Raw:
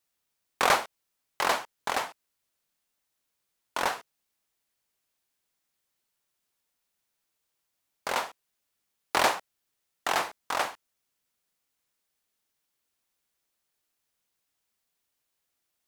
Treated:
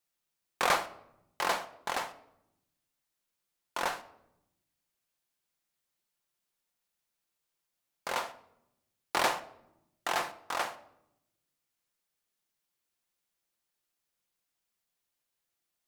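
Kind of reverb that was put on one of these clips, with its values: simulated room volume 2600 m³, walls furnished, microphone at 0.85 m; trim -4.5 dB

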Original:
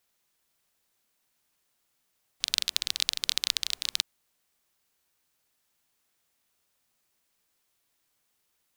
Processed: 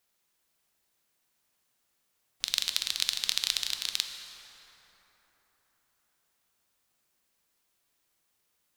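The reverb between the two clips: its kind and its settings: plate-style reverb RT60 4.4 s, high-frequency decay 0.45×, DRR 5 dB; trim -1.5 dB

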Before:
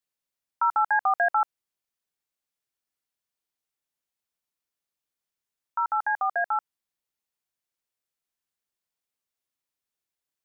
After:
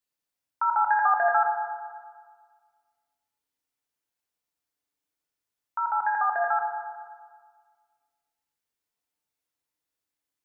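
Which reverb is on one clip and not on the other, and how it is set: FDN reverb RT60 1.7 s, low-frequency decay 0.85×, high-frequency decay 0.4×, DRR 0.5 dB; trim -1 dB

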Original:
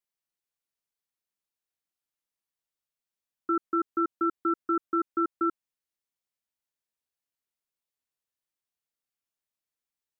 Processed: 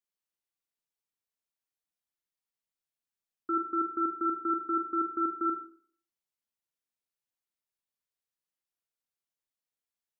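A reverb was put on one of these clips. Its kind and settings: Schroeder reverb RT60 0.53 s, combs from 33 ms, DRR 4.5 dB; trim -5 dB

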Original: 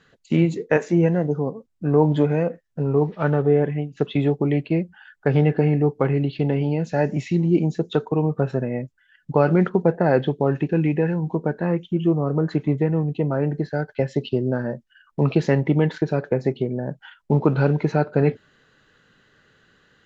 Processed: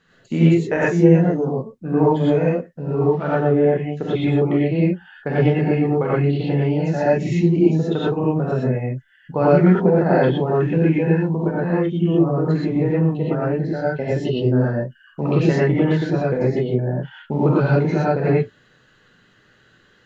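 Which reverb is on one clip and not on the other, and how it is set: gated-style reverb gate 140 ms rising, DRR -7 dB; trim -4.5 dB

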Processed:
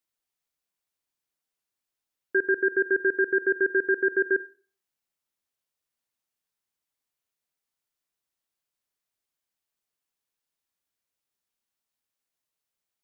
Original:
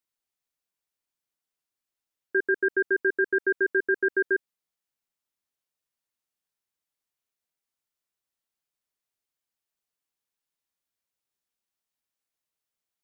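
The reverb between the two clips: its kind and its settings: Schroeder reverb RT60 0.42 s, combs from 31 ms, DRR 17 dB; trim +1 dB

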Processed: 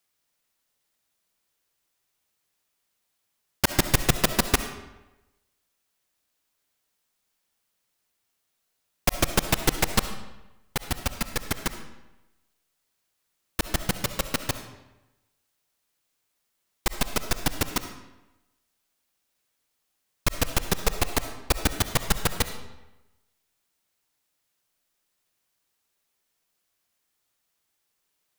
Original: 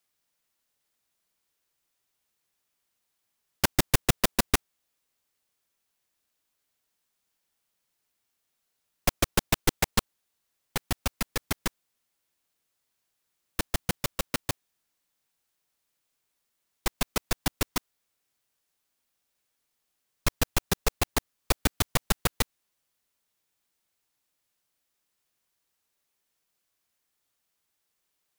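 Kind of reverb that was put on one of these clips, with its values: algorithmic reverb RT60 1 s, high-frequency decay 0.8×, pre-delay 25 ms, DRR 8.5 dB; trim +2 dB

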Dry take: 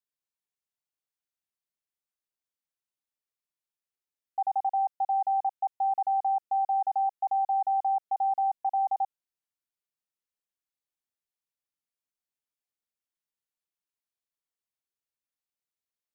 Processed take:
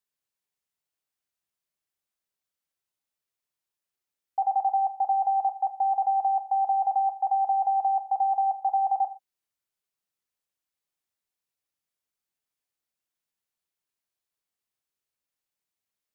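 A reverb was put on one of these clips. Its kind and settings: gated-style reverb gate 150 ms falling, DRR 9 dB; trim +3.5 dB

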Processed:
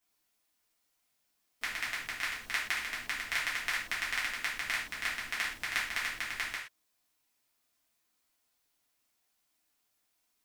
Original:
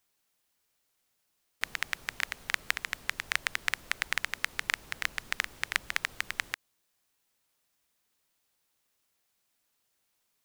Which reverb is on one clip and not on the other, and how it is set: gated-style reverb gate 150 ms falling, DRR -7.5 dB; trim -9 dB

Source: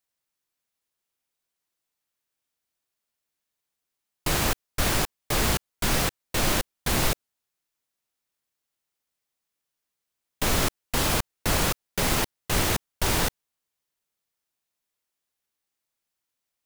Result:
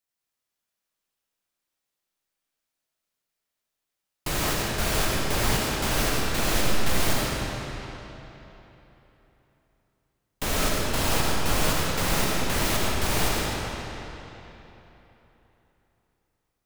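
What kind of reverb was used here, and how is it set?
algorithmic reverb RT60 3.5 s, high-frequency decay 0.8×, pre-delay 45 ms, DRR -4 dB; trim -4 dB

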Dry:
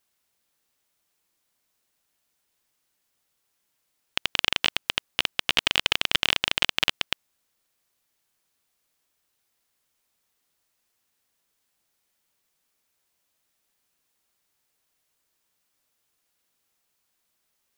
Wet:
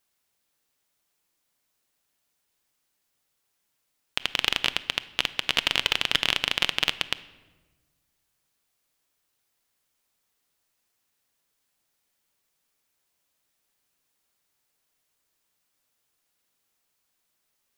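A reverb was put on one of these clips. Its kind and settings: simulated room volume 870 m³, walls mixed, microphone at 0.3 m; trim -1 dB

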